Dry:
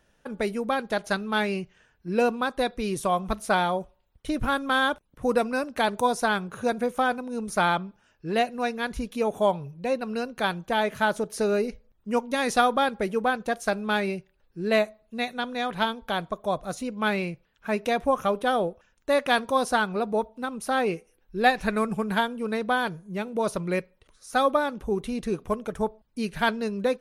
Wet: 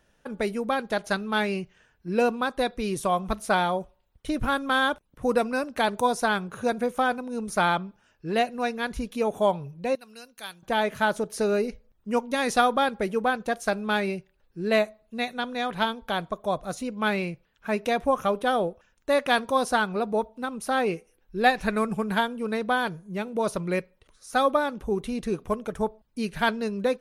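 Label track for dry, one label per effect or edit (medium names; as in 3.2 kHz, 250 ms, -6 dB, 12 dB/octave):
9.950000	10.630000	pre-emphasis filter coefficient 0.9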